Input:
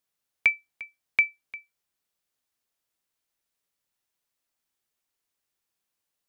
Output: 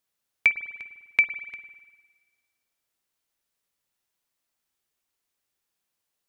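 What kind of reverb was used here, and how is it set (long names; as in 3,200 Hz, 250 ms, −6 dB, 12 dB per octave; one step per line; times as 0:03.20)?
spring reverb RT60 1.4 s, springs 50 ms, chirp 70 ms, DRR 11 dB
level +1.5 dB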